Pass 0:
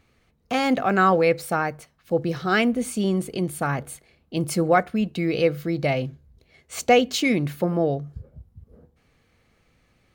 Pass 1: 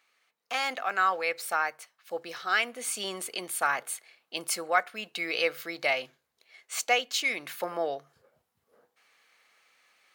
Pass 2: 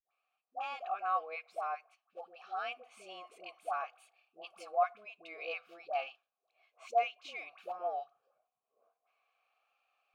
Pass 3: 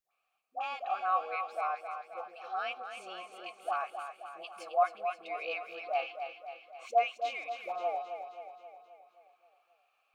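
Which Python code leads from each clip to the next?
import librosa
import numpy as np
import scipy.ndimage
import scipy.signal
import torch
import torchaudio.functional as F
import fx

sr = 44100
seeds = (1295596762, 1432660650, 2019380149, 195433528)

y1 = scipy.signal.sosfilt(scipy.signal.butter(2, 1000.0, 'highpass', fs=sr, output='sos'), x)
y1 = fx.rider(y1, sr, range_db=4, speed_s=0.5)
y2 = fx.vowel_filter(y1, sr, vowel='a')
y2 = fx.vibrato(y2, sr, rate_hz=0.54, depth_cents=56.0)
y2 = fx.dispersion(y2, sr, late='highs', ms=105.0, hz=690.0)
y3 = fx.echo_feedback(y2, sr, ms=265, feedback_pct=56, wet_db=-8.0)
y3 = y3 * 10.0 ** (3.0 / 20.0)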